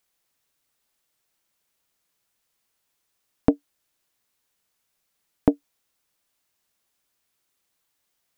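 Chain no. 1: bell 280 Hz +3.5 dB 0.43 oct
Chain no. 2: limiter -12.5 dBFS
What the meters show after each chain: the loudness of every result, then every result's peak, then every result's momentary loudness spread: -24.0, -34.5 LUFS; -1.5, -12.5 dBFS; 8, 6 LU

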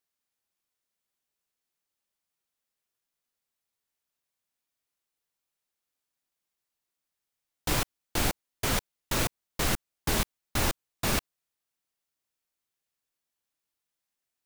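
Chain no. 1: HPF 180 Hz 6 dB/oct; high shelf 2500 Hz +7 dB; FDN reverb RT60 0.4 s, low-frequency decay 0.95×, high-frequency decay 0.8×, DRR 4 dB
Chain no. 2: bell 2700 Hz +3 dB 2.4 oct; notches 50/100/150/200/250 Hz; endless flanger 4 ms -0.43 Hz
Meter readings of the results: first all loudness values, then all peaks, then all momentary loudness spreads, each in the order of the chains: -25.0, -32.5 LUFS; -10.0, -16.0 dBFS; 3, 3 LU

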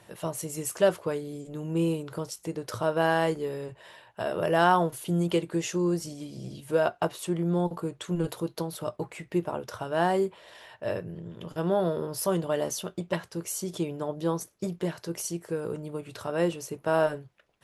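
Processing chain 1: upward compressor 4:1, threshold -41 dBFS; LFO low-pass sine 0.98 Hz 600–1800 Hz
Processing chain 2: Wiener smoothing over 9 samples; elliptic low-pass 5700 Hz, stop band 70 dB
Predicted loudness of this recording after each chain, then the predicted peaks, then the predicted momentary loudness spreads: -26.0, -30.5 LUFS; -4.5, -10.0 dBFS; 17, 12 LU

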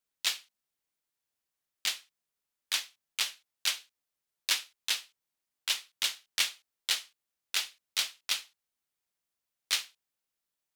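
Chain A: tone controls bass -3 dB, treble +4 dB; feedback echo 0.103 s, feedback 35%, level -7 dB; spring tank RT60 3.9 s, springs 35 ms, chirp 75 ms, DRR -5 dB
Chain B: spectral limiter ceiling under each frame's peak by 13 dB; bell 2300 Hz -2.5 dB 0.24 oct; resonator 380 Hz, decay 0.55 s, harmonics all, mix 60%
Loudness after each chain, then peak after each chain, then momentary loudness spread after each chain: -28.5, -40.5 LUFS; -10.5, -20.0 dBFS; 13, 8 LU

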